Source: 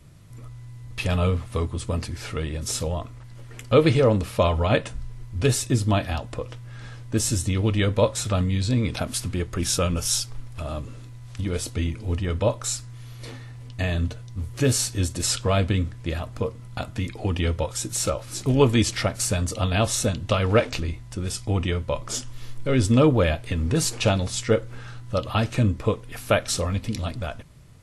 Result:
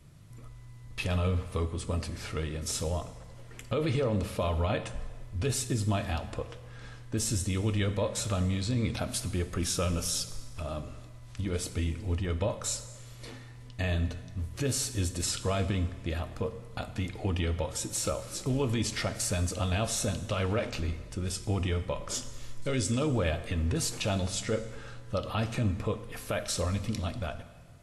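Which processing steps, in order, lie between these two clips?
22.62–23.07 s: peaking EQ 7.2 kHz +13.5 dB 1.7 oct; peak limiter -16 dBFS, peak gain reduction 10.5 dB; plate-style reverb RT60 1.5 s, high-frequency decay 0.85×, DRR 10.5 dB; trim -5 dB

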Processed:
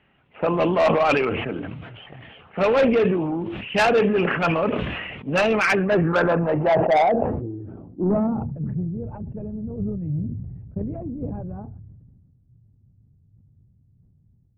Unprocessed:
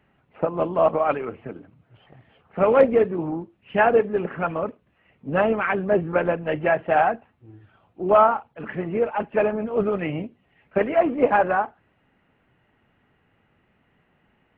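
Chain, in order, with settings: dynamic bell 2.6 kHz, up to +6 dB, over -49 dBFS, Q 4; low-pass sweep 3.1 kHz -> 110 Hz, 5.40–8.89 s; level rider gain up to 7 dB; saturation -13.5 dBFS, distortion -10 dB; decay stretcher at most 32 dB/s

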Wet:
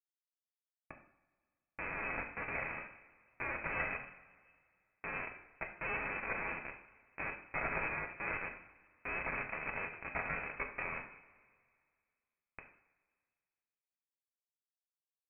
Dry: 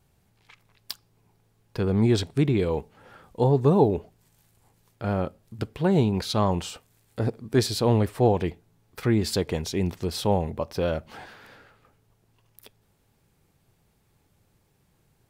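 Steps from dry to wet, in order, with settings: comb filter that takes the minimum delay 1.4 ms; delay 251 ms -19 dB; Schmitt trigger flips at -27.5 dBFS; two-slope reverb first 0.62 s, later 2.2 s, from -19 dB, DRR 2 dB; peak limiter -21 dBFS, peak gain reduction 5 dB; Chebyshev high-pass 200 Hz, order 5; tilt shelf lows -7 dB, about 1.1 kHz; frequency inversion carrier 2.8 kHz; trim -1.5 dB

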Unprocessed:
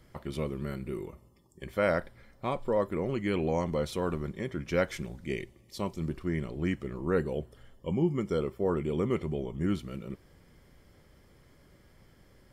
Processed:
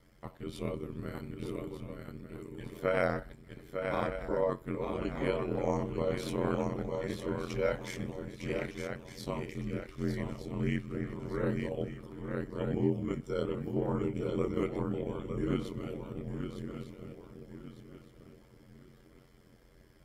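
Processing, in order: granular stretch 1.6×, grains 62 ms; shuffle delay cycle 1209 ms, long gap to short 3:1, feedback 32%, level -5.5 dB; ring modulator 44 Hz

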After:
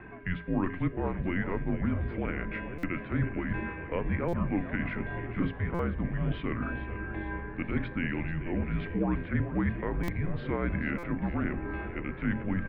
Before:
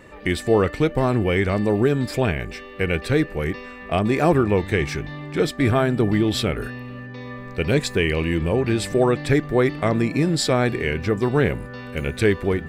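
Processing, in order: bass shelf 190 Hz +10.5 dB; hum notches 50/100/150/200/250/300/350/400/450 Hz; reverse; compression 5:1, threshold -25 dBFS, peak gain reduction 14.5 dB; reverse; frequency-shifting echo 437 ms, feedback 55%, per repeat +92 Hz, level -13 dB; on a send at -18 dB: reverberation RT60 0.60 s, pre-delay 3 ms; on the sum: mistuned SSB -180 Hz 200–2700 Hz; buffer glitch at 2.78/4.28/5.74/10.03/10.98 s, samples 256, times 8

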